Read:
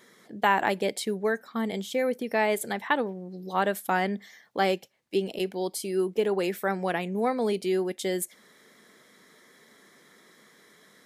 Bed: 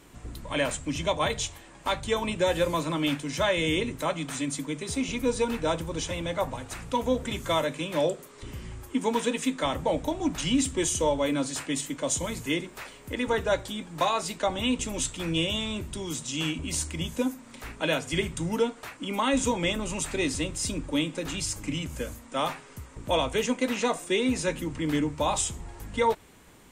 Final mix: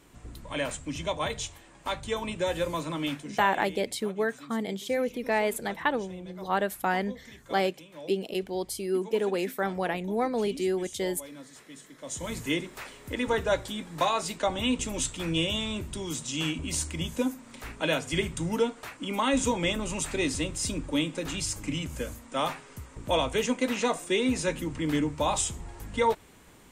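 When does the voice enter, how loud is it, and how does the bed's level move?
2.95 s, -1.5 dB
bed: 3.06 s -4 dB
3.71 s -18 dB
11.91 s -18 dB
12.33 s -0.5 dB

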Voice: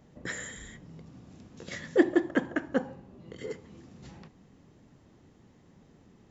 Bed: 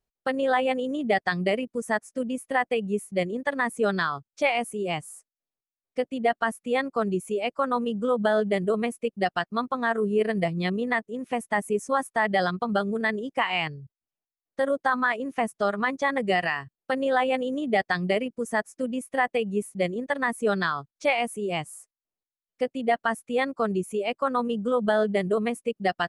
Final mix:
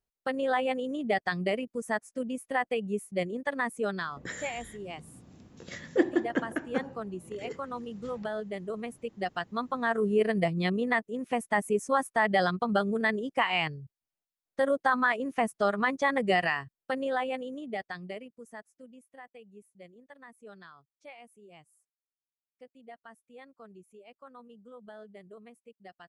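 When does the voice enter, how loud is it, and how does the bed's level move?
4.00 s, -2.5 dB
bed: 3.63 s -4.5 dB
4.36 s -12 dB
8.6 s -12 dB
10.1 s -1.5 dB
16.53 s -1.5 dB
19.23 s -25 dB

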